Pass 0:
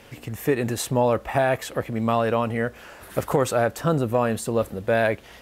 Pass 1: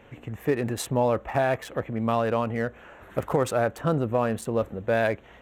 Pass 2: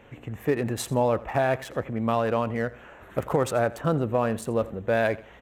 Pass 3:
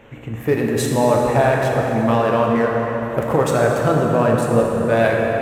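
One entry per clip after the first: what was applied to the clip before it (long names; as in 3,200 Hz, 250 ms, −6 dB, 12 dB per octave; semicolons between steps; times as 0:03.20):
adaptive Wiener filter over 9 samples; level −2.5 dB
repeating echo 84 ms, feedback 32%, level −19 dB
dense smooth reverb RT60 4.3 s, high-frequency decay 0.6×, DRR −1.5 dB; level +5 dB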